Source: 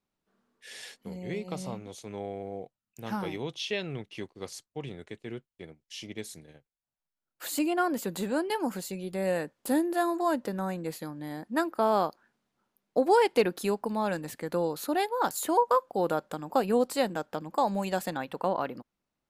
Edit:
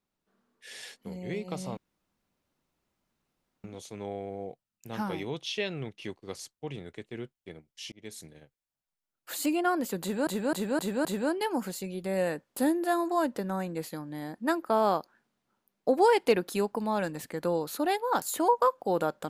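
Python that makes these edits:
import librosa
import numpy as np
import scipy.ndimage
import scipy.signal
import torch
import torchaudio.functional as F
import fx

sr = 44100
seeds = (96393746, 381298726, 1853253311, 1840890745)

y = fx.edit(x, sr, fx.insert_room_tone(at_s=1.77, length_s=1.87),
    fx.fade_in_span(start_s=6.05, length_s=0.28),
    fx.repeat(start_s=8.14, length_s=0.26, count=5), tone=tone)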